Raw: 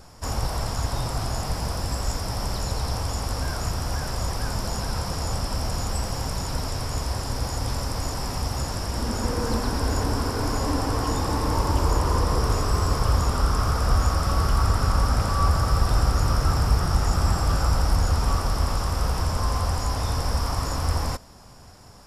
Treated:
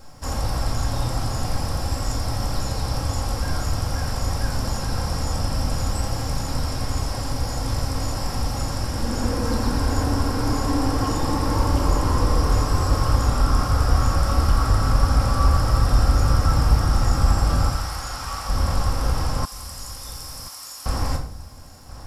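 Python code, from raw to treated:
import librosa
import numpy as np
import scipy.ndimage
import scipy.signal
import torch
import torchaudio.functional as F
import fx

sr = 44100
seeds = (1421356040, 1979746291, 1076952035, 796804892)

y = fx.highpass(x, sr, hz=940.0, slope=12, at=(17.69, 18.49))
y = fx.room_shoebox(y, sr, seeds[0], volume_m3=810.0, walls='furnished', distance_m=2.2)
y = fx.quant_dither(y, sr, seeds[1], bits=12, dither='triangular')
y = fx.differentiator(y, sr, at=(19.45, 20.86))
y = y + 10.0 ** (-16.5 / 20.0) * np.pad(y, (int(1031 * sr / 1000.0), 0))[:len(y)]
y = F.gain(torch.from_numpy(y), -1.5).numpy()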